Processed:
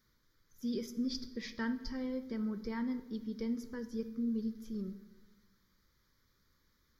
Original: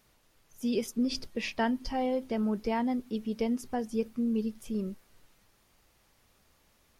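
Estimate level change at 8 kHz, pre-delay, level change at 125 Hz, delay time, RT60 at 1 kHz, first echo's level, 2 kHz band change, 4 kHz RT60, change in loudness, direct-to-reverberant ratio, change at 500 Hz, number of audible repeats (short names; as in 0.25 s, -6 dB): n/a, 4 ms, -5.5 dB, none, 1.0 s, none, -7.0 dB, 0.80 s, -6.5 dB, 10.0 dB, -10.5 dB, none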